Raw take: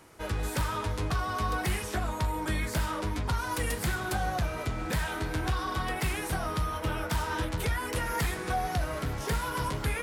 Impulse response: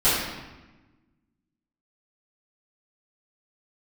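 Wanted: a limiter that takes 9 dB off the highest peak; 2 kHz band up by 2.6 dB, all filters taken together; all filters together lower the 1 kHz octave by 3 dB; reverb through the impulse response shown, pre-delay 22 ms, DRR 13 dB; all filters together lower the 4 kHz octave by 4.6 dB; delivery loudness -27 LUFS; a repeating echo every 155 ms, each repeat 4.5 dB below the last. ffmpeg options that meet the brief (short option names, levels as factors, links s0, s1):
-filter_complex "[0:a]equalizer=f=1000:t=o:g=-5.5,equalizer=f=2000:t=o:g=7.5,equalizer=f=4000:t=o:g=-9,alimiter=level_in=1.68:limit=0.0631:level=0:latency=1,volume=0.596,aecho=1:1:155|310|465|620|775|930|1085|1240|1395:0.596|0.357|0.214|0.129|0.0772|0.0463|0.0278|0.0167|0.01,asplit=2[s0][s1];[1:a]atrim=start_sample=2205,adelay=22[s2];[s1][s2]afir=irnorm=-1:irlink=0,volume=0.0299[s3];[s0][s3]amix=inputs=2:normalize=0,volume=2.37"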